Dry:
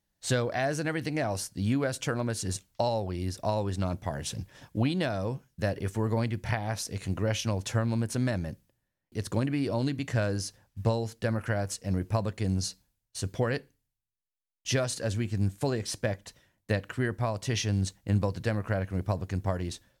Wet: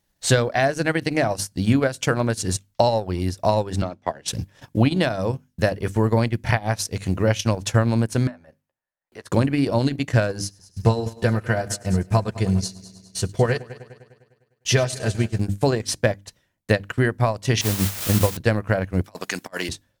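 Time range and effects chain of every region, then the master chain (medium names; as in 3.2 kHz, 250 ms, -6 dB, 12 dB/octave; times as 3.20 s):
3.82–4.28 s: three-band isolator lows -14 dB, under 240 Hz, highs -16 dB, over 6.3 kHz + upward expansion, over -44 dBFS
8.27–9.32 s: three-band isolator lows -19 dB, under 520 Hz, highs -12 dB, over 2.1 kHz + compression 1.5:1, threshold -51 dBFS + doubling 13 ms -9 dB
10.39–15.40 s: comb of notches 280 Hz + multi-head delay 101 ms, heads first and second, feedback 49%, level -16 dB
17.61–18.37 s: low-pass 1.5 kHz + word length cut 6-bit, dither triangular
19.04–19.69 s: high-pass 190 Hz 24 dB/octave + tilt shelf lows -9.5 dB, about 760 Hz + compressor with a negative ratio -39 dBFS, ratio -0.5
whole clip: hum notches 50/100/150/200/250/300 Hz; transient shaper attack +2 dB, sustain -12 dB; trim +9 dB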